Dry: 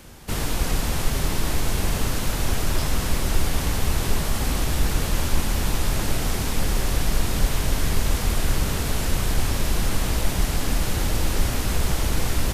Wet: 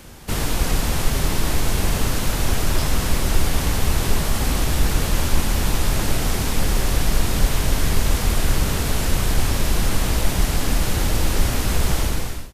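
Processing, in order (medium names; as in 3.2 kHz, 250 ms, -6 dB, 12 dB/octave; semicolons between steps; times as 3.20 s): fade out at the end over 0.55 s; trim +3 dB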